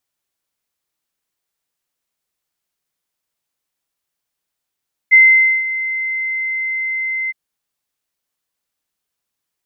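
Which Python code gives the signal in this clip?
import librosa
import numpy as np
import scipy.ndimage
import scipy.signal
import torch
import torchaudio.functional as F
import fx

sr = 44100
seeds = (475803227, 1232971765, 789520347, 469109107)

y = fx.adsr_tone(sr, wave='sine', hz=2070.0, attack_ms=25.0, decay_ms=497.0, sustain_db=-14.5, held_s=2.19, release_ms=25.0, level_db=-3.5)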